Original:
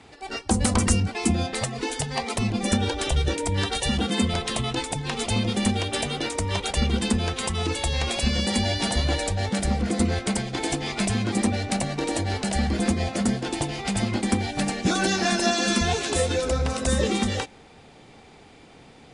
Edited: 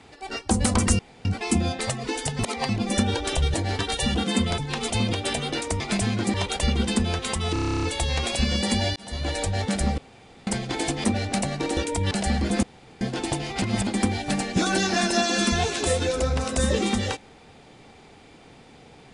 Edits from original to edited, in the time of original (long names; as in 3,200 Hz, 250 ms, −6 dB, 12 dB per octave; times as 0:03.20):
0:00.99: splice in room tone 0.26 s
0:02.13–0:02.43: reverse
0:03.28–0:03.62: swap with 0:12.15–0:12.40
0:04.41–0:04.94: remove
0:05.49–0:05.81: remove
0:07.67: stutter 0.03 s, 11 plays
0:08.80–0:09.28: fade in
0:09.82–0:10.31: fill with room tone
0:10.88–0:11.42: move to 0:06.48
0:12.92–0:13.30: fill with room tone
0:13.91–0:14.16: reverse